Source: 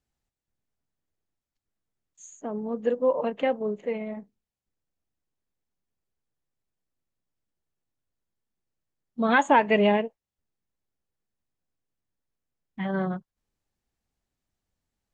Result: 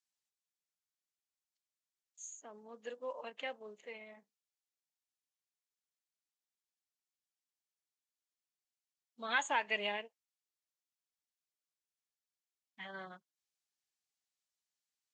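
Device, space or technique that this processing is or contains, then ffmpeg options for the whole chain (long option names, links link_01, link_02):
piezo pickup straight into a mixer: -af "lowpass=6500,aderivative,volume=3dB"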